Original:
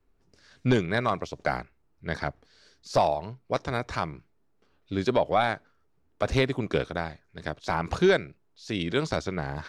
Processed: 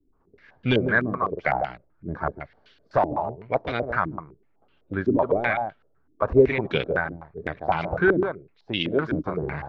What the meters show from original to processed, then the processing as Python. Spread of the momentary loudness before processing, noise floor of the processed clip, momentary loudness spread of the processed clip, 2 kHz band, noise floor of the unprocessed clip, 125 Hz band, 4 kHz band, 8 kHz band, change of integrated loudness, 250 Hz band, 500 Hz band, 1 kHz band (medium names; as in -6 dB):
12 LU, -64 dBFS, 13 LU, +5.5 dB, -67 dBFS, +1.0 dB, +1.0 dB, under -20 dB, +3.0 dB, +3.5 dB, +3.5 dB, +2.5 dB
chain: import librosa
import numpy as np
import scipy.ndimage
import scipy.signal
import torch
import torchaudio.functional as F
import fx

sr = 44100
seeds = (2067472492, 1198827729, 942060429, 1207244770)

y = fx.spec_quant(x, sr, step_db=15)
y = y + 10.0 ** (-7.5 / 20.0) * np.pad(y, (int(150 * sr / 1000.0), 0))[:len(y)]
y = fx.filter_held_lowpass(y, sr, hz=7.9, low_hz=300.0, high_hz=3000.0)